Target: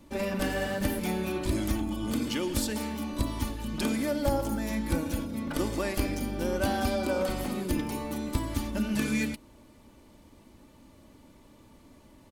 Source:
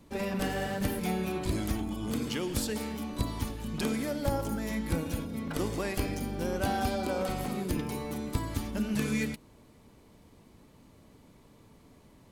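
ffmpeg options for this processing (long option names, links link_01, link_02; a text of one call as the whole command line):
ffmpeg -i in.wav -af "aecho=1:1:3.4:0.42,volume=1.5dB" out.wav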